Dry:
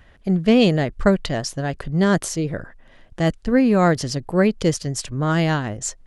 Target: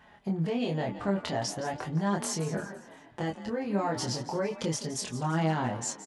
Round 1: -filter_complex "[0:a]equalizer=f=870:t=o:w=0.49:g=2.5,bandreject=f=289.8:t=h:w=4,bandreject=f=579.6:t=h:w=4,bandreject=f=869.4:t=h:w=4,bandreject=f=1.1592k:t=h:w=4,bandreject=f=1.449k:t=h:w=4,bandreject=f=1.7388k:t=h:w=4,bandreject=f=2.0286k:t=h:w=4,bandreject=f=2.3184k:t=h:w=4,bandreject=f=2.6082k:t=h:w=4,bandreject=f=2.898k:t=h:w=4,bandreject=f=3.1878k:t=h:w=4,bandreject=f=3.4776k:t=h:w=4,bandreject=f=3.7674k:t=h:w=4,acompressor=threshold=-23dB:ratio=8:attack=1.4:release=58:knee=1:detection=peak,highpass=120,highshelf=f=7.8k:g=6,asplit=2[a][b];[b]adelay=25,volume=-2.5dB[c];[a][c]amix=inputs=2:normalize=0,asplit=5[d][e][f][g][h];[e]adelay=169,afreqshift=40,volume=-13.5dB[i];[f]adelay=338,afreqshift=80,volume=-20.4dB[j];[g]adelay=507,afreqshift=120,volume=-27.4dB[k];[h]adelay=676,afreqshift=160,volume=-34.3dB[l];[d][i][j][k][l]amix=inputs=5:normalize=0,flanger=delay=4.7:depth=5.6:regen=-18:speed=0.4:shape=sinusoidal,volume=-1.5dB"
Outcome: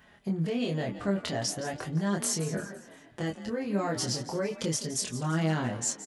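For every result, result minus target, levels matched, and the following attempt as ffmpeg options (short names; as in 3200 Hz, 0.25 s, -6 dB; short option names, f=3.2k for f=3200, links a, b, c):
1000 Hz band -4.5 dB; 8000 Hz band +3.5 dB
-filter_complex "[0:a]equalizer=f=870:t=o:w=0.49:g=11.5,bandreject=f=289.8:t=h:w=4,bandreject=f=579.6:t=h:w=4,bandreject=f=869.4:t=h:w=4,bandreject=f=1.1592k:t=h:w=4,bandreject=f=1.449k:t=h:w=4,bandreject=f=1.7388k:t=h:w=4,bandreject=f=2.0286k:t=h:w=4,bandreject=f=2.3184k:t=h:w=4,bandreject=f=2.6082k:t=h:w=4,bandreject=f=2.898k:t=h:w=4,bandreject=f=3.1878k:t=h:w=4,bandreject=f=3.4776k:t=h:w=4,bandreject=f=3.7674k:t=h:w=4,acompressor=threshold=-23dB:ratio=8:attack=1.4:release=58:knee=1:detection=peak,highpass=120,highshelf=f=7.8k:g=6,asplit=2[a][b];[b]adelay=25,volume=-2.5dB[c];[a][c]amix=inputs=2:normalize=0,asplit=5[d][e][f][g][h];[e]adelay=169,afreqshift=40,volume=-13.5dB[i];[f]adelay=338,afreqshift=80,volume=-20.4dB[j];[g]adelay=507,afreqshift=120,volume=-27.4dB[k];[h]adelay=676,afreqshift=160,volume=-34.3dB[l];[d][i][j][k][l]amix=inputs=5:normalize=0,flanger=delay=4.7:depth=5.6:regen=-18:speed=0.4:shape=sinusoidal,volume=-1.5dB"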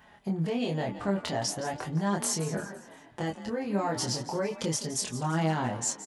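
8000 Hz band +3.5 dB
-filter_complex "[0:a]equalizer=f=870:t=o:w=0.49:g=11.5,bandreject=f=289.8:t=h:w=4,bandreject=f=579.6:t=h:w=4,bandreject=f=869.4:t=h:w=4,bandreject=f=1.1592k:t=h:w=4,bandreject=f=1.449k:t=h:w=4,bandreject=f=1.7388k:t=h:w=4,bandreject=f=2.0286k:t=h:w=4,bandreject=f=2.3184k:t=h:w=4,bandreject=f=2.6082k:t=h:w=4,bandreject=f=2.898k:t=h:w=4,bandreject=f=3.1878k:t=h:w=4,bandreject=f=3.4776k:t=h:w=4,bandreject=f=3.7674k:t=h:w=4,acompressor=threshold=-23dB:ratio=8:attack=1.4:release=58:knee=1:detection=peak,highpass=120,highshelf=f=7.8k:g=-3.5,asplit=2[a][b];[b]adelay=25,volume=-2.5dB[c];[a][c]amix=inputs=2:normalize=0,asplit=5[d][e][f][g][h];[e]adelay=169,afreqshift=40,volume=-13.5dB[i];[f]adelay=338,afreqshift=80,volume=-20.4dB[j];[g]adelay=507,afreqshift=120,volume=-27.4dB[k];[h]adelay=676,afreqshift=160,volume=-34.3dB[l];[d][i][j][k][l]amix=inputs=5:normalize=0,flanger=delay=4.7:depth=5.6:regen=-18:speed=0.4:shape=sinusoidal,volume=-1.5dB"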